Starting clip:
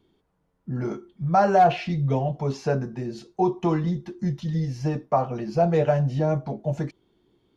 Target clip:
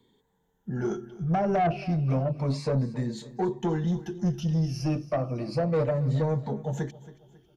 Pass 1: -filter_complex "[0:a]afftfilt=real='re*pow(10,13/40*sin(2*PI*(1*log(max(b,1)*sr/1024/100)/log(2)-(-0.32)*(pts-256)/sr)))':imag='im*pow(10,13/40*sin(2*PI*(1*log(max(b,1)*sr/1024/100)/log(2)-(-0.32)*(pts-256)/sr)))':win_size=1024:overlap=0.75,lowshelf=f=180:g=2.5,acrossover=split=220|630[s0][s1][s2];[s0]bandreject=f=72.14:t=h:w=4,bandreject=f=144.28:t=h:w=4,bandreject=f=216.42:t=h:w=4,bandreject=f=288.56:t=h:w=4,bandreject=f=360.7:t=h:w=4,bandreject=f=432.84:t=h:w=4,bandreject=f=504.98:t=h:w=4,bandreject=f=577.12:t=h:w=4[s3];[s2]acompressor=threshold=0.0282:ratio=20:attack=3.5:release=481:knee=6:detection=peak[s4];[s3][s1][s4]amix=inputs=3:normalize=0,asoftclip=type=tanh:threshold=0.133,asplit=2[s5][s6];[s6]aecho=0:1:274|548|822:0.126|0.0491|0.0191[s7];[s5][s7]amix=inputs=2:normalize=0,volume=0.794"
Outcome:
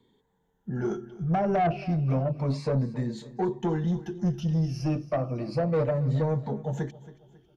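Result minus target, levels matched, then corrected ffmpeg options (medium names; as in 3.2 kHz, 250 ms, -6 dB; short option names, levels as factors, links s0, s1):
8 kHz band -4.5 dB
-filter_complex "[0:a]afftfilt=real='re*pow(10,13/40*sin(2*PI*(1*log(max(b,1)*sr/1024/100)/log(2)-(-0.32)*(pts-256)/sr)))':imag='im*pow(10,13/40*sin(2*PI*(1*log(max(b,1)*sr/1024/100)/log(2)-(-0.32)*(pts-256)/sr)))':win_size=1024:overlap=0.75,lowshelf=f=180:g=2.5,acrossover=split=220|630[s0][s1][s2];[s0]bandreject=f=72.14:t=h:w=4,bandreject=f=144.28:t=h:w=4,bandreject=f=216.42:t=h:w=4,bandreject=f=288.56:t=h:w=4,bandreject=f=360.7:t=h:w=4,bandreject=f=432.84:t=h:w=4,bandreject=f=504.98:t=h:w=4,bandreject=f=577.12:t=h:w=4[s3];[s2]acompressor=threshold=0.0282:ratio=20:attack=3.5:release=481:knee=6:detection=peak,highshelf=f=4600:g=6.5[s4];[s3][s1][s4]amix=inputs=3:normalize=0,asoftclip=type=tanh:threshold=0.133,asplit=2[s5][s6];[s6]aecho=0:1:274|548|822:0.126|0.0491|0.0191[s7];[s5][s7]amix=inputs=2:normalize=0,volume=0.794"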